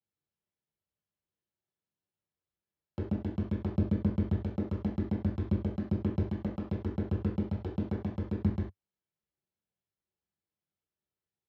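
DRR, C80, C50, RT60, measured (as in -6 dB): -6.5 dB, 12.0 dB, 5.5 dB, not exponential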